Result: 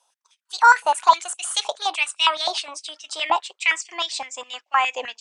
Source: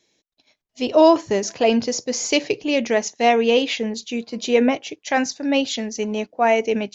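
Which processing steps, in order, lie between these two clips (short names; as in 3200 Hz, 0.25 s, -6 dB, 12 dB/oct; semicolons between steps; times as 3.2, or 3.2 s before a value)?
speed glide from 155% -> 112%; stepped high-pass 9.7 Hz 910–2700 Hz; gain -2.5 dB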